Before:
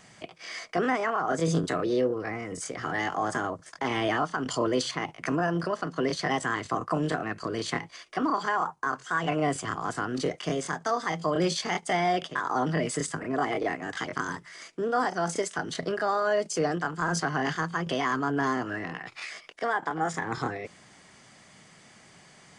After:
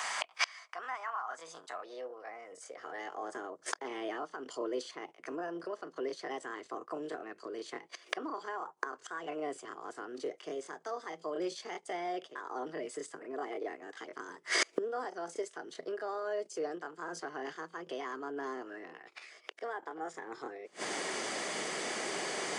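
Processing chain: flipped gate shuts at -34 dBFS, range -31 dB; high-pass sweep 990 Hz -> 390 Hz, 1.33–3.36; gain +16.5 dB

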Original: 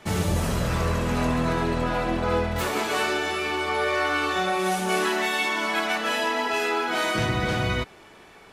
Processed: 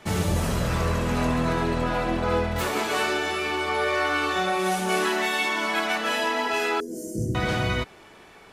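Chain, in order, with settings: 6.8–7.35 inverse Chebyshev band-stop 790–3900 Hz, stop band 40 dB

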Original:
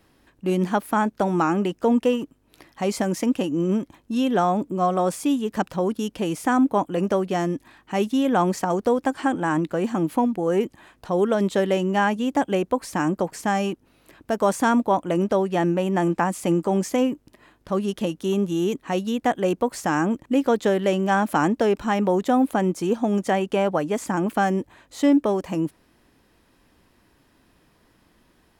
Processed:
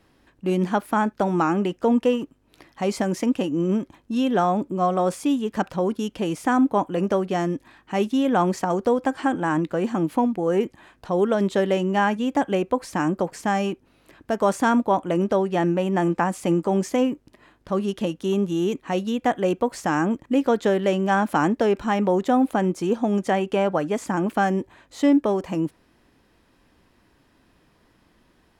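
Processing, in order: high shelf 9700 Hz -8.5 dB; on a send: rippled Chebyshev high-pass 370 Hz, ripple 9 dB + reverb, pre-delay 3 ms, DRR 19.5 dB

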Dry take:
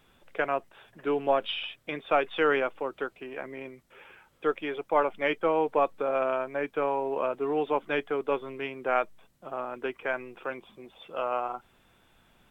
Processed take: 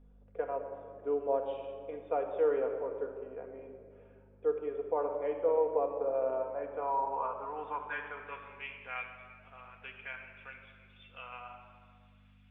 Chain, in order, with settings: band-pass sweep 490 Hz -> 2500 Hz, 6.16–8.73; dynamic EQ 950 Hz, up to +6 dB, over -52 dBFS, Q 5.2; hum 50 Hz, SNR 21 dB; shoebox room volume 3700 m³, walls mixed, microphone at 1.8 m; gain -4.5 dB

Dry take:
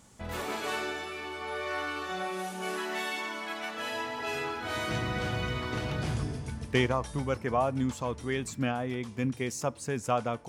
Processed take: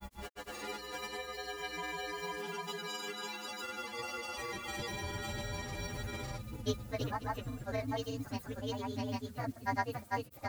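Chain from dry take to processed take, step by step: inharmonic rescaling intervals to 126%; added noise blue -57 dBFS; grains, spray 0.494 s, pitch spread up and down by 0 st; gain -3.5 dB

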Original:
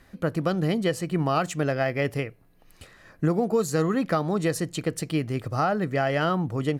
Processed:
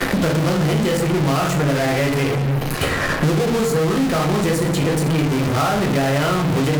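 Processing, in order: shoebox room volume 66 m³, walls mixed, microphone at 0.87 m; in parallel at -4 dB: fuzz box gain 47 dB, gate -51 dBFS; on the sum: three-band squash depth 100%; gain -5.5 dB

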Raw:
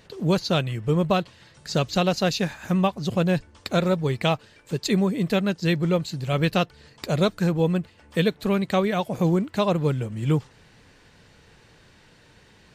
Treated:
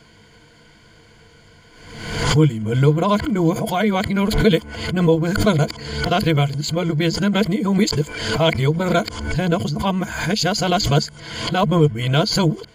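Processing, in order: whole clip reversed; ripple EQ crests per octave 1.8, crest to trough 12 dB; backwards sustainer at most 55 dB/s; gain +3 dB

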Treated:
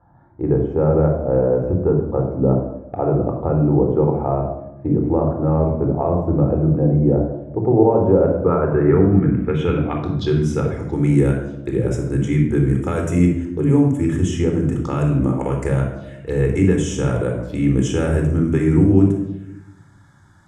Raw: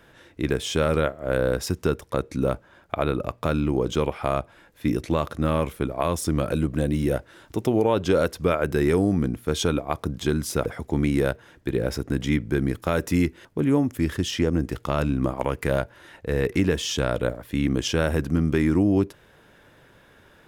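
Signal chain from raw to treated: HPF 120 Hz 6 dB/oct; low shelf 300 Hz +7.5 dB; envelope phaser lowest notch 410 Hz, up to 4500 Hz, full sweep at -22 dBFS; low-pass sweep 770 Hz -> 7600 Hz, 8.18–10.97; reverb RT60 0.90 s, pre-delay 23 ms, DRR 2 dB; gain -3 dB

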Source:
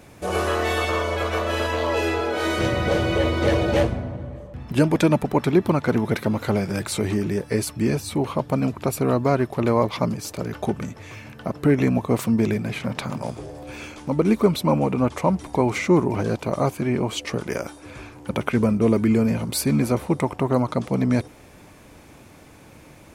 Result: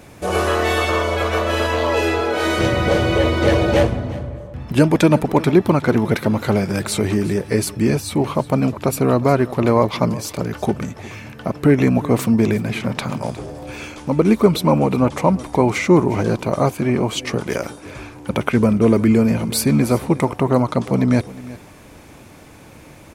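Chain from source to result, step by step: echo 0.36 s -18 dB; gain +4.5 dB

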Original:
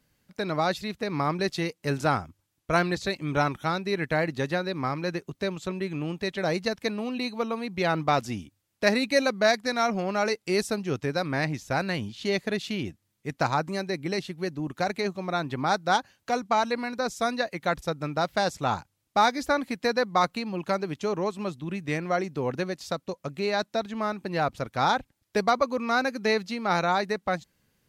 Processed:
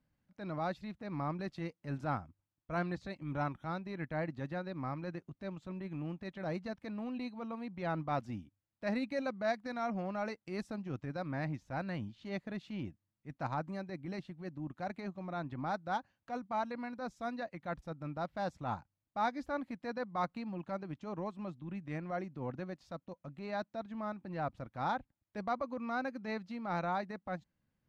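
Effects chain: LPF 1000 Hz 6 dB/oct; transient shaper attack -7 dB, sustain -3 dB; bell 420 Hz -10 dB 0.38 oct; gain -6.5 dB

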